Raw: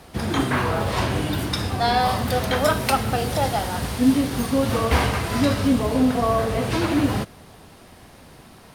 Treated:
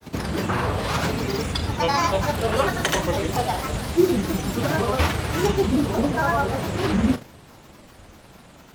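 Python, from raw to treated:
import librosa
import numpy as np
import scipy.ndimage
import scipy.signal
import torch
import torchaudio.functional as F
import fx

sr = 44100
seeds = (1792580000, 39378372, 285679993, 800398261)

y = fx.granulator(x, sr, seeds[0], grain_ms=100.0, per_s=20.0, spray_ms=100.0, spread_st=7)
y = fx.doubler(y, sr, ms=38.0, db=-11)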